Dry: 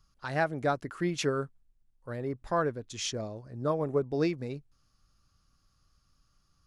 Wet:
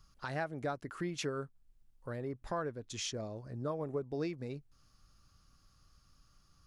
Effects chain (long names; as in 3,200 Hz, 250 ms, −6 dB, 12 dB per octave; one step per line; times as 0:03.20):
downward compressor 2 to 1, threshold −47 dBFS, peak gain reduction 13.5 dB
level +3.5 dB